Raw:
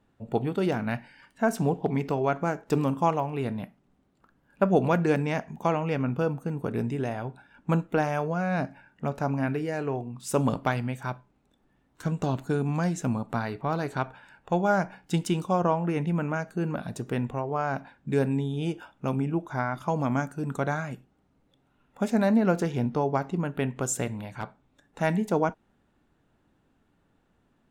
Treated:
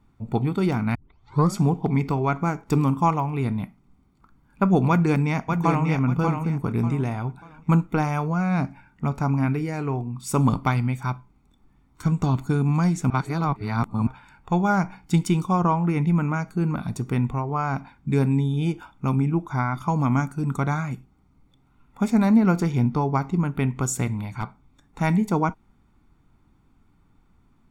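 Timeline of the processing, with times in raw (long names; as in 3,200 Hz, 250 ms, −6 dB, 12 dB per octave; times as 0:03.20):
0:00.95: tape start 0.68 s
0:04.89–0:05.86: delay throw 590 ms, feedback 30%, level −5 dB
0:13.10–0:14.07: reverse
whole clip: low-shelf EQ 77 Hz +10 dB; notch filter 3,300 Hz, Q 13; comb filter 0.9 ms, depth 60%; level +2 dB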